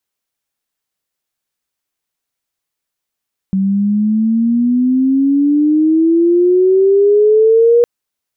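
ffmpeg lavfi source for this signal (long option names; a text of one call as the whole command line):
ffmpeg -f lavfi -i "aevalsrc='pow(10,(-11+5.5*t/4.31)/20)*sin(2*PI*190*4.31/log(480/190)*(exp(log(480/190)*t/4.31)-1))':duration=4.31:sample_rate=44100" out.wav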